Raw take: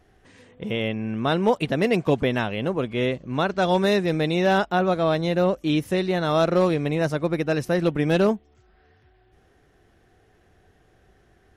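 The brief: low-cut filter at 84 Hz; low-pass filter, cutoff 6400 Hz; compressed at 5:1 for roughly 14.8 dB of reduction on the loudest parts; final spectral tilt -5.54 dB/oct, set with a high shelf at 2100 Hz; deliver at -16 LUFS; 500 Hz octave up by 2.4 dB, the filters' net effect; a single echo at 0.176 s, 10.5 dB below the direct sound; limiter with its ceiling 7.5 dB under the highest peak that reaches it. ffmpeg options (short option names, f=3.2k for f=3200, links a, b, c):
-af "highpass=84,lowpass=6.4k,equalizer=f=500:t=o:g=3.5,highshelf=f=2.1k:g=-8.5,acompressor=threshold=-31dB:ratio=5,alimiter=level_in=3.5dB:limit=-24dB:level=0:latency=1,volume=-3.5dB,aecho=1:1:176:0.299,volume=20dB"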